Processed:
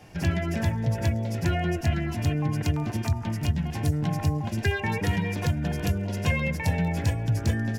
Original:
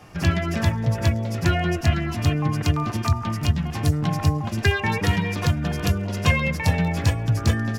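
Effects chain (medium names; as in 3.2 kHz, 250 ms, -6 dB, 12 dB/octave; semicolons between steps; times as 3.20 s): dynamic bell 4.1 kHz, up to -5 dB, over -43 dBFS, Q 1.1; in parallel at 0 dB: peak limiter -15.5 dBFS, peak gain reduction 9.5 dB; on the sum: peaking EQ 1.2 kHz -15 dB 0.22 oct; trim -8.5 dB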